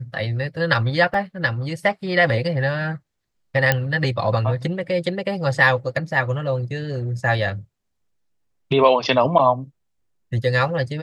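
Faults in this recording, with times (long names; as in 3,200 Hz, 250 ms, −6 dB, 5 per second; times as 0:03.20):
0:01.14: drop-out 2.5 ms
0:03.72: click −3 dBFS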